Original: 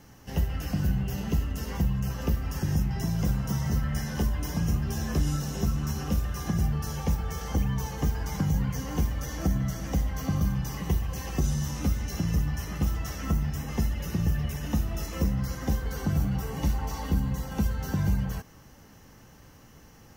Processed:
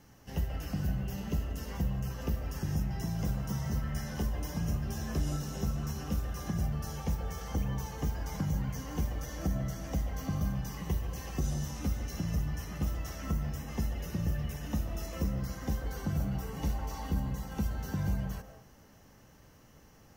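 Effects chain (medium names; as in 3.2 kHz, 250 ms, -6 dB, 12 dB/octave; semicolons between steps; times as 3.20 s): on a send: peaking EQ 570 Hz +14.5 dB 1.7 oct + reverberation RT60 0.60 s, pre-delay 100 ms, DRR 7.5 dB; on the sum: trim -6 dB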